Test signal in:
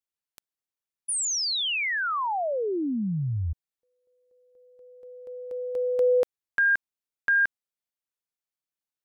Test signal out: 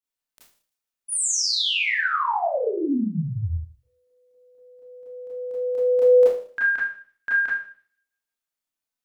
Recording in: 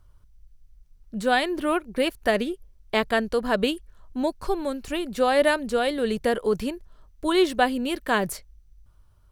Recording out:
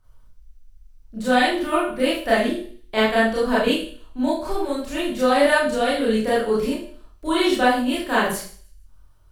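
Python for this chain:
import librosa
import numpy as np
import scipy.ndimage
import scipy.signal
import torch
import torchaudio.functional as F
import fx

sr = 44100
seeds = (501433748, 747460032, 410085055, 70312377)

y = fx.hum_notches(x, sr, base_hz=60, count=10)
y = fx.echo_wet_highpass(y, sr, ms=155, feedback_pct=32, hz=3500.0, wet_db=-21.5)
y = fx.rev_schroeder(y, sr, rt60_s=0.45, comb_ms=25, drr_db=-8.5)
y = F.gain(torch.from_numpy(y), -5.0).numpy()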